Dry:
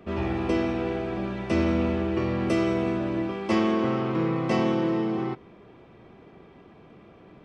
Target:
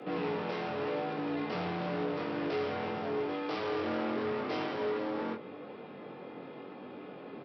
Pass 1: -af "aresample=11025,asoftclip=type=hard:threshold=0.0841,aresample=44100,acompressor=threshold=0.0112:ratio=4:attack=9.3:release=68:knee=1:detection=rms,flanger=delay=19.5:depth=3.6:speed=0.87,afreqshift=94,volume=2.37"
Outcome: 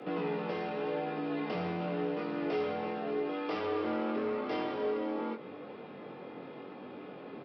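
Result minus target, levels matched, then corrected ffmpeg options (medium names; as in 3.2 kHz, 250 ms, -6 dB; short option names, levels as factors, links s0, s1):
hard clipper: distortion -8 dB
-af "aresample=11025,asoftclip=type=hard:threshold=0.0316,aresample=44100,acompressor=threshold=0.0112:ratio=4:attack=9.3:release=68:knee=1:detection=rms,flanger=delay=19.5:depth=3.6:speed=0.87,afreqshift=94,volume=2.37"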